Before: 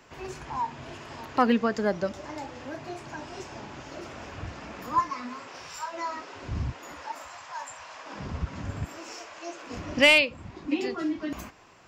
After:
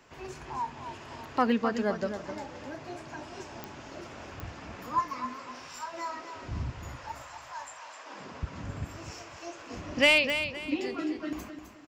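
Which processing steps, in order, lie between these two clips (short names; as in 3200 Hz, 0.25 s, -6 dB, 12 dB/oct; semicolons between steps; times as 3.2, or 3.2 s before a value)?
7.65–8.43 HPF 280 Hz 12 dB/oct; feedback echo 0.259 s, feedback 31%, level -9 dB; pops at 3.64/4.4/10.3, -18 dBFS; gain -3.5 dB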